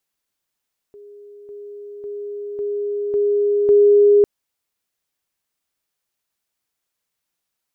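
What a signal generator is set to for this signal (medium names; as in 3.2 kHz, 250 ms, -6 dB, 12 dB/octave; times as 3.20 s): level ladder 410 Hz -38.5 dBFS, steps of 6 dB, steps 6, 0.55 s 0.00 s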